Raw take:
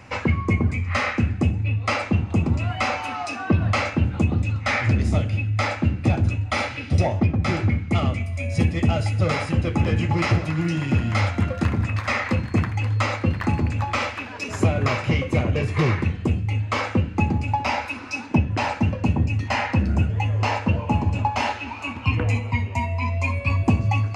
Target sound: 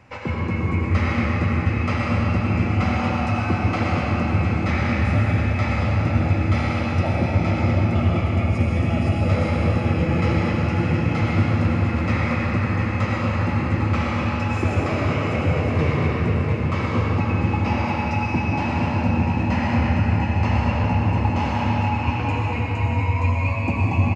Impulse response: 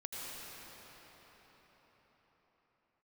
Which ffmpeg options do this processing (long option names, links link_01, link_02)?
-filter_complex "[0:a]highshelf=frequency=3800:gain=-7.5,aecho=1:1:713:0.335[link_01];[1:a]atrim=start_sample=2205[link_02];[link_01][link_02]afir=irnorm=-1:irlink=0"